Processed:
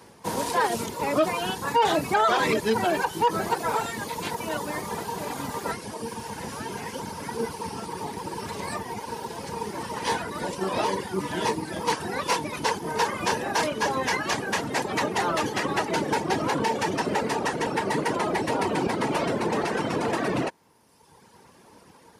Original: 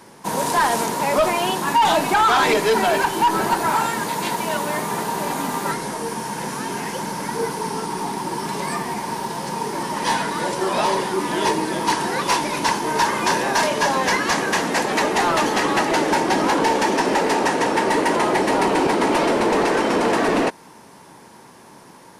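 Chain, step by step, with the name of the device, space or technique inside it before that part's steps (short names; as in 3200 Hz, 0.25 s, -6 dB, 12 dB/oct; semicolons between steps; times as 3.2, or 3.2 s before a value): HPF 91 Hz 24 dB/oct; reverb removal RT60 1.4 s; octave pedal (harmoniser -12 st -5 dB); gain -5.5 dB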